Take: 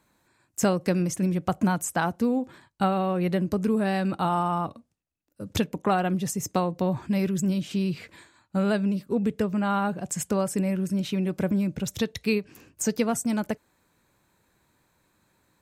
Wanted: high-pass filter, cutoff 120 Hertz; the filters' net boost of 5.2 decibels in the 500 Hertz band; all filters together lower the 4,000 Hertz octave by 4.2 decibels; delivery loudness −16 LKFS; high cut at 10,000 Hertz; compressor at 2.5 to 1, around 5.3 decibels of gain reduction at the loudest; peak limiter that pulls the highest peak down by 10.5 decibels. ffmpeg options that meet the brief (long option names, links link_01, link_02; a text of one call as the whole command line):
ffmpeg -i in.wav -af "highpass=120,lowpass=10000,equalizer=frequency=500:width_type=o:gain=6.5,equalizer=frequency=4000:width_type=o:gain=-5.5,acompressor=threshold=-24dB:ratio=2.5,volume=15.5dB,alimiter=limit=-5.5dB:level=0:latency=1" out.wav